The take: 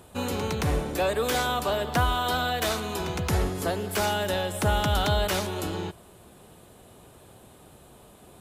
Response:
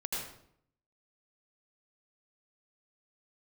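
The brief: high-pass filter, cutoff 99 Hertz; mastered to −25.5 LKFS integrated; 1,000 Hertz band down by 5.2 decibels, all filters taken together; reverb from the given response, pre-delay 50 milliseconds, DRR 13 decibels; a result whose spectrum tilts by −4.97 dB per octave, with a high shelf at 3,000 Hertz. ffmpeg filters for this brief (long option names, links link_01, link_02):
-filter_complex "[0:a]highpass=99,equalizer=frequency=1000:width_type=o:gain=-6.5,highshelf=frequency=3000:gain=-7,asplit=2[link_01][link_02];[1:a]atrim=start_sample=2205,adelay=50[link_03];[link_02][link_03]afir=irnorm=-1:irlink=0,volume=-16.5dB[link_04];[link_01][link_04]amix=inputs=2:normalize=0,volume=4.5dB"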